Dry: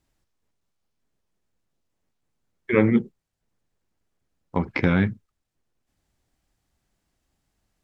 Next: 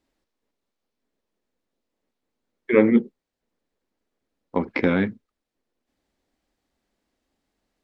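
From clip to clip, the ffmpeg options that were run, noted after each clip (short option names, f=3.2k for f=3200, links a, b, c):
-af "equalizer=f=125:t=o:w=1:g=-7,equalizer=f=250:t=o:w=1:g=10,equalizer=f=500:t=o:w=1:g=9,equalizer=f=1k:t=o:w=1:g=4,equalizer=f=2k:t=o:w=1:g=5,equalizer=f=4k:t=o:w=1:g=6,volume=-7dB"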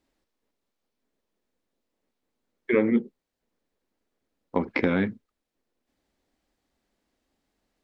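-af "acompressor=threshold=-20dB:ratio=2.5"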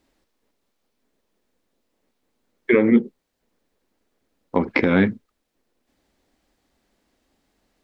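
-af "alimiter=limit=-12.5dB:level=0:latency=1:release=139,volume=8dB"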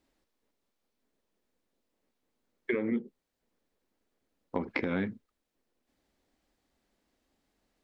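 -af "acompressor=threshold=-20dB:ratio=4,volume=-8dB"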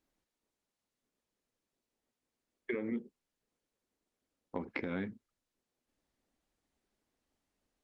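-af "volume=-6dB" -ar 48000 -c:a libopus -b:a 32k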